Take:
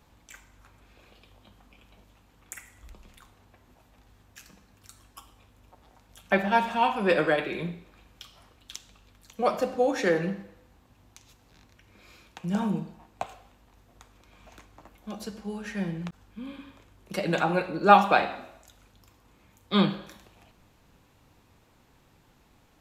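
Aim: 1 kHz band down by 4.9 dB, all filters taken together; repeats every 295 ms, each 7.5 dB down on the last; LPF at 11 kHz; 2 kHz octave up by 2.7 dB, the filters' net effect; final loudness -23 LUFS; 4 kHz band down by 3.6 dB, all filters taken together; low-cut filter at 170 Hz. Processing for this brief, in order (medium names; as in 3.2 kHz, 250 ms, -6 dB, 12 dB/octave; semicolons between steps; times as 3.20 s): high-pass 170 Hz; low-pass 11 kHz; peaking EQ 1 kHz -8.5 dB; peaking EQ 2 kHz +8.5 dB; peaking EQ 4 kHz -7.5 dB; feedback delay 295 ms, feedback 42%, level -7.5 dB; trim +5.5 dB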